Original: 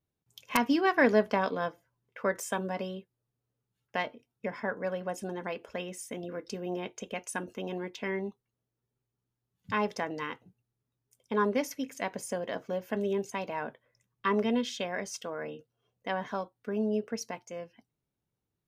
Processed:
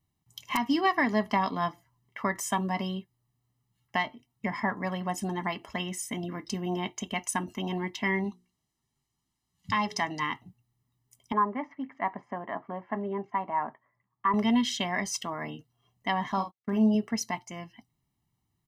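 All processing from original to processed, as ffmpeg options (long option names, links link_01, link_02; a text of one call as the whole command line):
ffmpeg -i in.wav -filter_complex "[0:a]asettb=1/sr,asplit=3[link_01][link_02][link_03];[link_01]atrim=end=8.244[link_04];[link_02]atrim=start=8.24:end=10.2,asetpts=PTS-STARTPTS,afade=type=in:duration=0.004:curve=qsin,afade=type=out:start_time=1.956:duration=0.004:curve=qsin,lowpass=6000,aemphasis=mode=production:type=75fm,bandreject=frequency=60:width_type=h:width=6,bandreject=frequency=120:width_type=h:width=6,bandreject=frequency=180:width_type=h:width=6,bandreject=frequency=240:width_type=h:width=6,bandreject=frequency=300:width_type=h:width=6,bandreject=frequency=360:width_type=h:width=6,bandreject=frequency=420:width_type=h:width=6[link_05];[link_03]atrim=start=10.196[link_06];[link_04][link_05]acrossfade=duration=0.004:curve1=hsin:curve2=qsin[link_07];[link_07][link_06]acrossfade=duration=0.004:curve1=qsin:curve2=hsin,asettb=1/sr,asplit=3[link_08][link_09][link_10];[link_08]atrim=end=11.324[link_11];[link_09]atrim=start=11.32:end=14.34,asetpts=PTS-STARTPTS,afade=type=in:duration=0.004:curve=qsin,afade=type=out:start_time=3.016:duration=0.004:curve=qsin,lowpass=frequency=1500:width=0.5412,lowpass=frequency=1500:width=1.3066,aemphasis=mode=production:type=riaa[link_12];[link_10]atrim=start=14.336[link_13];[link_11][link_12]acrossfade=duration=0.004:curve1=hsin:curve2=qsin[link_14];[link_14][link_13]acrossfade=duration=0.004:curve1=qsin:curve2=hsin,asettb=1/sr,asplit=3[link_15][link_16][link_17];[link_15]atrim=end=16.324[link_18];[link_16]atrim=start=16.32:end=16.95,asetpts=PTS-STARTPTS,afade=type=in:duration=0.004:curve=qsin,afade=type=out:start_time=0.626:duration=0.004:curve=qsin,asplit=2[link_19][link_20];[link_20]adelay=46,volume=-9dB[link_21];[link_19][link_21]amix=inputs=2:normalize=0,atrim=end_sample=27783,agate=range=-31dB:threshold=-50dB:ratio=16:release=100:detection=peak[link_22];[link_17]atrim=start=16.946[link_23];[link_18][link_22]acrossfade=duration=0.004:curve1=hsin:curve2=qsin[link_24];[link_24][link_23]acrossfade=duration=0.004:curve1=qsin:curve2=hsin,aecho=1:1:1:0.88,alimiter=limit=-19.5dB:level=0:latency=1:release=452,volume=4dB" out.wav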